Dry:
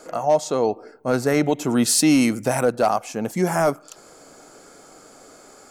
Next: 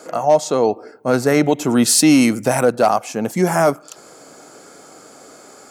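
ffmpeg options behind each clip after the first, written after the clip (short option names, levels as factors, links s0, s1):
-af "highpass=94,volume=1.68"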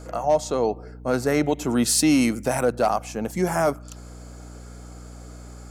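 -af "aeval=exprs='val(0)+0.0224*(sin(2*PI*60*n/s)+sin(2*PI*2*60*n/s)/2+sin(2*PI*3*60*n/s)/3+sin(2*PI*4*60*n/s)/4+sin(2*PI*5*60*n/s)/5)':c=same,volume=0.473"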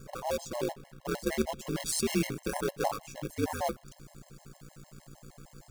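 -af "aeval=exprs='val(0)*sin(2*PI*80*n/s)':c=same,acrusher=bits=2:mode=log:mix=0:aa=0.000001,afftfilt=real='re*gt(sin(2*PI*6.5*pts/sr)*(1-2*mod(floor(b*sr/1024/550),2)),0)':imag='im*gt(sin(2*PI*6.5*pts/sr)*(1-2*mod(floor(b*sr/1024/550),2)),0)':win_size=1024:overlap=0.75,volume=0.562"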